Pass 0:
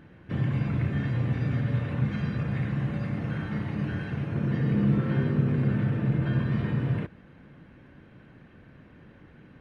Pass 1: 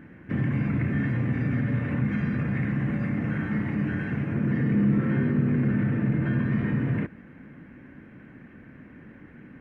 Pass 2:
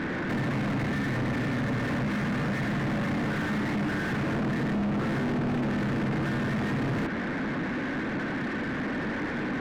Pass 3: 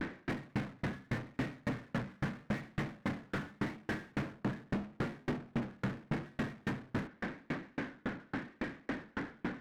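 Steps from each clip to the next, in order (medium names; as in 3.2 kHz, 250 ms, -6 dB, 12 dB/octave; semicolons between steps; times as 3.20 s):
graphic EQ 250/2000/4000 Hz +9/+10/-11 dB; in parallel at +1 dB: peak limiter -19.5 dBFS, peak gain reduction 10.5 dB; on the sum: trim -7 dB
compression, threshold -29 dBFS, peak gain reduction 11 dB; overdrive pedal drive 41 dB, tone 1.1 kHz, clips at -21 dBFS
vibrato 0.83 Hz 95 cents; sawtooth tremolo in dB decaying 3.6 Hz, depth 38 dB; trim -1.5 dB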